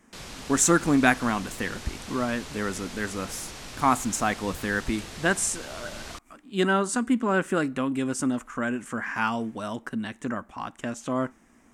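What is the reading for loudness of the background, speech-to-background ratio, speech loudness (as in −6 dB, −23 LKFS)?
−40.0 LKFS, 13.0 dB, −27.0 LKFS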